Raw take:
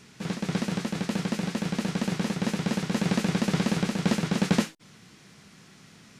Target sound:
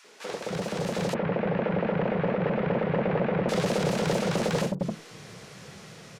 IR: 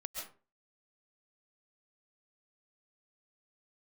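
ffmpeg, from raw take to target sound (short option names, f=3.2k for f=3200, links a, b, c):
-filter_complex "[0:a]acompressor=threshold=-27dB:ratio=5,acrossover=split=290|990[a][b][c];[b]adelay=40[d];[a]adelay=300[e];[e][d][c]amix=inputs=3:normalize=0,volume=31dB,asoftclip=hard,volume=-31dB,equalizer=f=125:t=o:w=1:g=4,equalizer=f=250:t=o:w=1:g=-4,equalizer=f=500:t=o:w=1:g=11,equalizer=f=1k:t=o:w=1:g=4,dynaudnorm=f=380:g=5:m=6dB,asettb=1/sr,asplit=3[f][g][h];[f]atrim=end=1.144[i];[g]atrim=start=1.14:end=3.49,asetpts=PTS-STARTPTS,afade=t=in:d=0.004:c=qsin,afade=t=out:st=2.346:d=0.004:c=qsin,lowpass=f=2.4k:w=0.5412,lowpass=f=2.4k:w=1.3066[j];[h]atrim=start=3.486[k];[i][j]acrossfade=d=0.004:c1=hsin:c2=qsin[l];[l][k]acrossfade=d=0.004:c1=qsin:c2=hsin"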